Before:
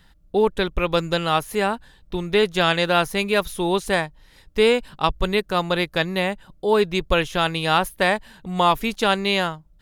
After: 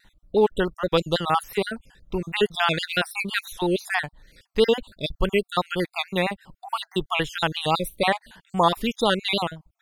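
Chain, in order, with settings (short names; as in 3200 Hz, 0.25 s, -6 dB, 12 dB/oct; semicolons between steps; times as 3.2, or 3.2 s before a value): random spectral dropouts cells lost 50%; vibrato 6.1 Hz 69 cents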